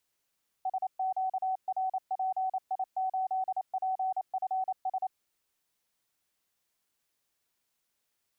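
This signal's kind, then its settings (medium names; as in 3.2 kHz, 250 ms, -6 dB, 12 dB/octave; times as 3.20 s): Morse "SQRPI8PFS" 28 wpm 755 Hz -27.5 dBFS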